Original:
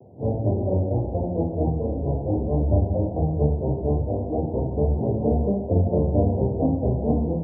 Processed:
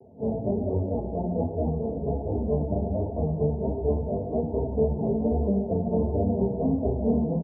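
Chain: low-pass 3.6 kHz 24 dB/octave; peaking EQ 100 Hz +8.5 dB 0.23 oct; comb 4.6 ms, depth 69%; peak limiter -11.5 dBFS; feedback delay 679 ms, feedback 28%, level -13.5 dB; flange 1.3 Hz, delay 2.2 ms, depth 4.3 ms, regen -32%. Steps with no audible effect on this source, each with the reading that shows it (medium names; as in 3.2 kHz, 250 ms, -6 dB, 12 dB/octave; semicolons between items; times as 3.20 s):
low-pass 3.6 kHz: input has nothing above 810 Hz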